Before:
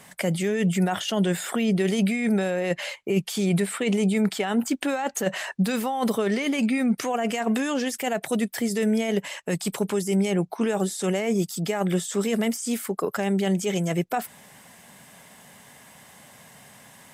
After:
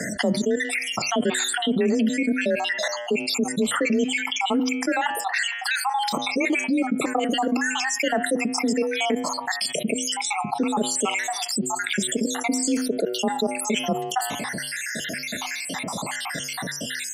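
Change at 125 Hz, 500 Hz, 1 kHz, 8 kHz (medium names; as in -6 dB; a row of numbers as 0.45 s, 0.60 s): -9.0 dB, -0.5 dB, +5.0 dB, +6.5 dB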